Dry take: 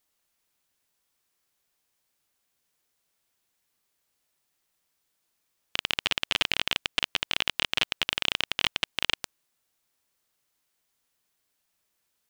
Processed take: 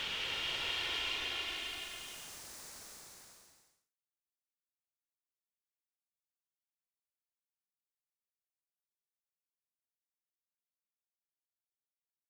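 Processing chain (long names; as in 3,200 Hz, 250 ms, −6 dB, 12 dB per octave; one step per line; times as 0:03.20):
spectral dynamics exaggerated over time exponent 1.5
extreme stretch with random phases 12×, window 0.25 s, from 0:09.04
level −7.5 dB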